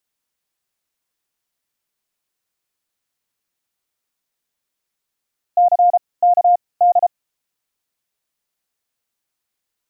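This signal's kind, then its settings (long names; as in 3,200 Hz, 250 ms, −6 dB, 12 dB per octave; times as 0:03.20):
Morse code "C K D" 33 words per minute 707 Hz −8.5 dBFS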